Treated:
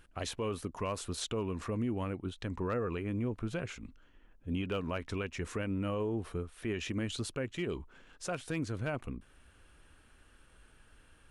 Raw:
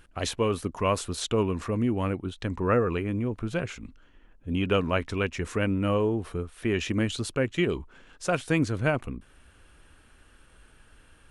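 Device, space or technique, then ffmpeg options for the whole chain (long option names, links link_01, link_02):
clipper into limiter: -af "asoftclip=type=hard:threshold=-14.5dB,alimiter=limit=-21dB:level=0:latency=1:release=131,volume=-5dB"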